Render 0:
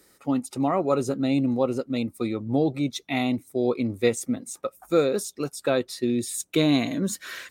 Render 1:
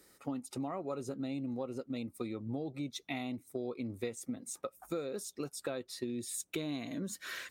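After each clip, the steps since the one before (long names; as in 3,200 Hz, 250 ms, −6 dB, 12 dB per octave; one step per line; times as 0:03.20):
downward compressor 6 to 1, threshold −31 dBFS, peak gain reduction 14.5 dB
level −4.5 dB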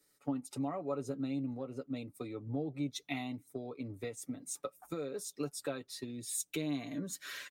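comb filter 6.9 ms, depth 58%
multiband upward and downward expander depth 40%
level −1.5 dB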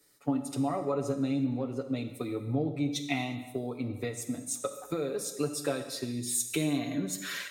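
reverb whose tail is shaped and stops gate 390 ms falling, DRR 7 dB
level +6.5 dB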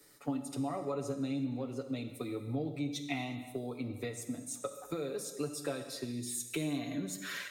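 multiband upward and downward compressor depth 40%
level −5.5 dB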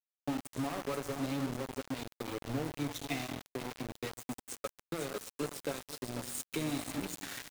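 repeating echo 496 ms, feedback 32%, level −11 dB
centre clipping without the shift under −35.5 dBFS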